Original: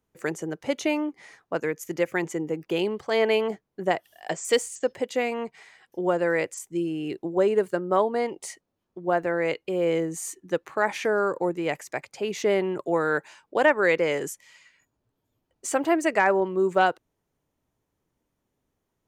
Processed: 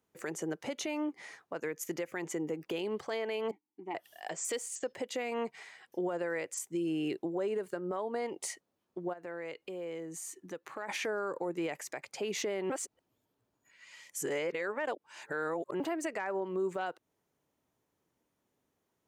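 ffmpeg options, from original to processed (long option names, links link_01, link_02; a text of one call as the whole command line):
ffmpeg -i in.wav -filter_complex "[0:a]asettb=1/sr,asplit=3[link_01][link_02][link_03];[link_01]atrim=end=3.514[link_04];[link_02]atrim=start=3.51:end=3.95,asetpts=PTS-STARTPTS,afade=type=in:duration=0.004:curve=qsin,afade=type=out:start_time=0.436:duration=0.004:curve=qsin,asplit=3[link_05][link_06][link_07];[link_05]bandpass=frequency=300:width_type=q:width=8,volume=0dB[link_08];[link_06]bandpass=frequency=870:width_type=q:width=8,volume=-6dB[link_09];[link_07]bandpass=frequency=2240:width_type=q:width=8,volume=-9dB[link_10];[link_08][link_09][link_10]amix=inputs=3:normalize=0[link_11];[link_03]atrim=start=3.946[link_12];[link_04][link_11]acrossfade=duration=0.004:curve1=hsin:curve2=qsin[link_13];[link_13][link_12]acrossfade=duration=0.004:curve1=qsin:curve2=hsin,asplit=3[link_14][link_15][link_16];[link_14]afade=type=out:start_time=9.12:duration=0.02[link_17];[link_15]acompressor=threshold=-42dB:ratio=3:attack=3.2:release=140:knee=1:detection=peak,afade=type=in:start_time=9.12:duration=0.02,afade=type=out:start_time=10.88:duration=0.02[link_18];[link_16]afade=type=in:start_time=10.88:duration=0.02[link_19];[link_17][link_18][link_19]amix=inputs=3:normalize=0,asplit=3[link_20][link_21][link_22];[link_20]atrim=end=12.702[link_23];[link_21]atrim=start=12.698:end=15.802,asetpts=PTS-STARTPTS,areverse[link_24];[link_22]atrim=start=15.798[link_25];[link_23][link_24]acrossfade=duration=0.004:curve1=hsin:curve2=hsin[link_26];[link_26][link_25]acrossfade=duration=0.004:curve1=hsin:curve2=hsin,highpass=frequency=200:poles=1,acompressor=threshold=-29dB:ratio=2.5,alimiter=level_in=2dB:limit=-24dB:level=0:latency=1:release=116,volume=-2dB" out.wav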